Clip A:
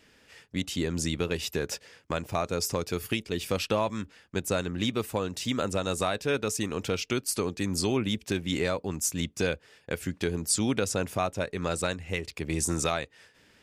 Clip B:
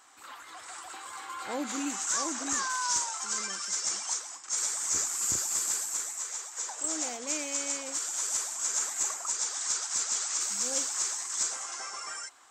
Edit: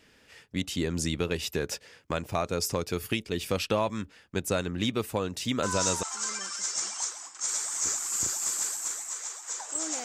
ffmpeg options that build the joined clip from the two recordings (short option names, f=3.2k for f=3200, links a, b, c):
-filter_complex "[0:a]apad=whole_dur=10.04,atrim=end=10.04,atrim=end=6.03,asetpts=PTS-STARTPTS[a];[1:a]atrim=start=2.72:end=7.13,asetpts=PTS-STARTPTS[b];[a][b]acrossfade=d=0.4:c1=log:c2=log"